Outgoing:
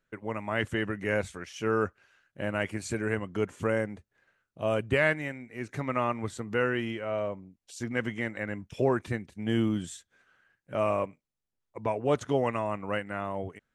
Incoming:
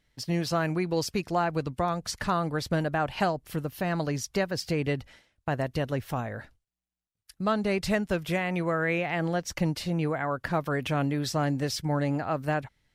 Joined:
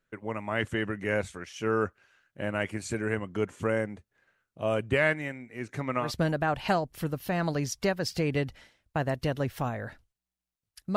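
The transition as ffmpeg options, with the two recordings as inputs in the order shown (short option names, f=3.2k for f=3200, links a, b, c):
-filter_complex "[0:a]apad=whole_dur=10.96,atrim=end=10.96,atrim=end=6.12,asetpts=PTS-STARTPTS[a];[1:a]atrim=start=2.5:end=7.48,asetpts=PTS-STARTPTS[b];[a][b]acrossfade=d=0.14:c1=tri:c2=tri"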